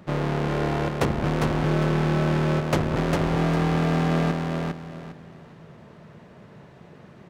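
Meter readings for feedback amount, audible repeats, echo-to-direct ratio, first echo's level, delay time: 27%, 3, −3.0 dB, −3.5 dB, 403 ms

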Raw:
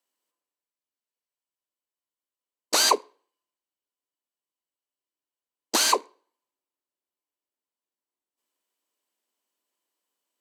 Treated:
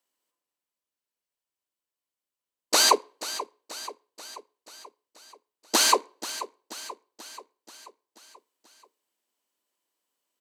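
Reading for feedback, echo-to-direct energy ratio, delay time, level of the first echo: 58%, −12.0 dB, 484 ms, −14.0 dB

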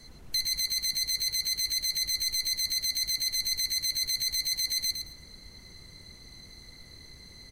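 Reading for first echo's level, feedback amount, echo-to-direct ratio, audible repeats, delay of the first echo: −7.0 dB, 21%, −7.0 dB, 3, 110 ms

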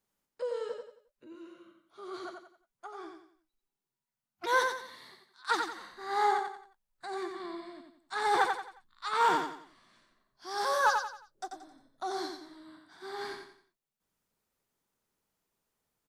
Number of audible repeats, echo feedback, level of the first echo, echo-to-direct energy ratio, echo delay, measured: 4, 36%, −5.0 dB, −4.5 dB, 89 ms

